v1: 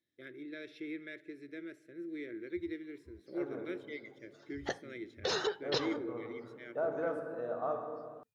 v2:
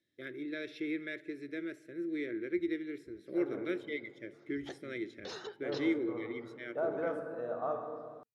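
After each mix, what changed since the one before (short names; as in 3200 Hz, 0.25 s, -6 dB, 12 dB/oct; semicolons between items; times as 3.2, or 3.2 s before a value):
first voice +5.5 dB; background -11.0 dB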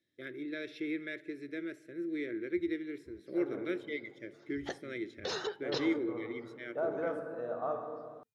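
background +7.5 dB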